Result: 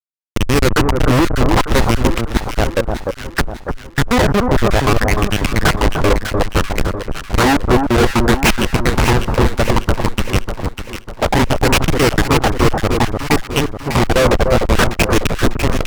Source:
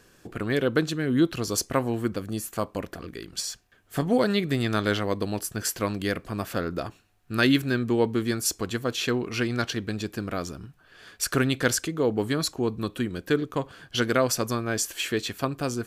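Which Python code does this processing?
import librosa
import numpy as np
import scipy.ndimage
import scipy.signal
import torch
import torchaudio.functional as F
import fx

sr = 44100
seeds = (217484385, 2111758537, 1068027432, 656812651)

y = fx.dereverb_blind(x, sr, rt60_s=0.78)
y = fx.schmitt(y, sr, flips_db=-22.5)
y = fx.filter_lfo_lowpass(y, sr, shape='sine', hz=0.61, low_hz=520.0, high_hz=2900.0, q=4.1)
y = fx.fuzz(y, sr, gain_db=45.0, gate_db=-53.0)
y = fx.echo_alternate(y, sr, ms=299, hz=1300.0, feedback_pct=67, wet_db=-4.0)
y = y * 10.0 ** (2.5 / 20.0)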